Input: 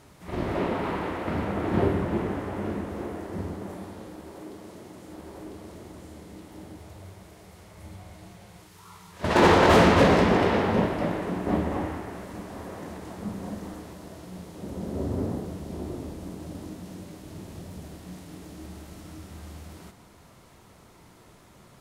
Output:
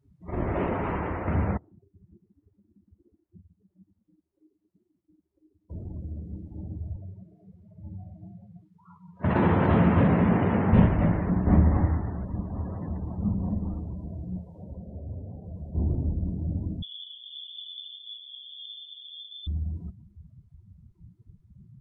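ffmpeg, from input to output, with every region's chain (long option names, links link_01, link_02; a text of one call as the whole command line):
ffmpeg -i in.wav -filter_complex "[0:a]asettb=1/sr,asplit=3[link_01][link_02][link_03];[link_01]atrim=end=1.574[link_04];[link_02]atrim=start=1.57:end=5.7,asetpts=PTS-STARTPTS,afade=type=in:duration=0.004:curve=qsin,afade=type=out:start_time=4.126:duration=0.004:curve=qsin,acompressor=threshold=-40dB:ratio=16:attack=3.2:release=140:knee=1:detection=peak,asplit=2[link_05][link_06];[link_06]adelay=17,volume=-13.5dB[link_07];[link_05][link_07]amix=inputs=2:normalize=0,atrim=end_sample=182133,agate=range=-33dB:threshold=-37dB:ratio=3:release=100:detection=peak[link_08];[link_03]atrim=start=5.696[link_09];[link_04][link_08]acrossfade=duration=0.004:curve1=hsin:curve2=qsin[link_10];[link_10][link_09]acrossfade=duration=0.004:curve1=qsin:curve2=hsin,asettb=1/sr,asplit=3[link_11][link_12][link_13];[link_11]atrim=end=6.964[link_14];[link_12]atrim=start=6.96:end=10.73,asetpts=PTS-STARTPTS,afade=type=in:duration=0.004:curve=qsin,afade=type=out:start_time=3.766:duration=0.004:curve=qsin,highpass=140,highshelf=frequency=4800:gain=-9.5,acrossover=split=430|1400|3400[link_15][link_16][link_17][link_18];[link_15]acompressor=threshold=-24dB:ratio=3[link_19];[link_16]acompressor=threshold=-28dB:ratio=3[link_20];[link_17]acompressor=threshold=-40dB:ratio=3[link_21];[link_18]acompressor=threshold=-55dB:ratio=3[link_22];[link_19][link_20][link_21][link_22]amix=inputs=4:normalize=0[link_23];[link_13]atrim=start=10.726[link_24];[link_14][link_23]acrossfade=duration=0.004:curve1=hsin:curve2=qsin[link_25];[link_25][link_24]acrossfade=duration=0.004:curve1=qsin:curve2=hsin,asettb=1/sr,asplit=3[link_26][link_27][link_28];[link_26]atrim=end=14.384[link_29];[link_27]atrim=start=14.38:end=15.75,asetpts=PTS-STARTPTS,afade=type=in:duration=0.004:curve=qsin,afade=type=out:start_time=1.366:duration=0.004:curve=qsin,lowshelf=frequency=420:width_type=q:width=1.5:gain=-6.5,acompressor=threshold=-40dB:ratio=16:attack=3.2:release=140:knee=1:detection=peak[link_30];[link_28]atrim=start=15.746[link_31];[link_29][link_30]acrossfade=duration=0.004:curve1=hsin:curve2=qsin[link_32];[link_32][link_31]acrossfade=duration=0.004:curve1=qsin:curve2=hsin,asettb=1/sr,asplit=3[link_33][link_34][link_35];[link_33]atrim=end=16.824[link_36];[link_34]atrim=start=16.82:end=19.47,asetpts=PTS-STARTPTS,afade=type=in:duration=0.004:curve=qsin,afade=type=out:start_time=2.646:duration=0.004:curve=qsin,equalizer=frequency=1100:width_type=o:width=2.3:gain=-2.5,lowpass=frequency=3100:width_type=q:width=0.5098,lowpass=frequency=3100:width_type=q:width=0.6013,lowpass=frequency=3100:width_type=q:width=0.9,lowpass=frequency=3100:width_type=q:width=2.563,afreqshift=-3600[link_37];[link_35]atrim=start=19.466[link_38];[link_36][link_37]acrossfade=duration=0.004:curve1=hsin:curve2=qsin[link_39];[link_39][link_38]acrossfade=duration=0.004:curve1=qsin:curve2=hsin,afftdn=noise_reduction=33:noise_floor=-41,asubboost=boost=6.5:cutoff=150" out.wav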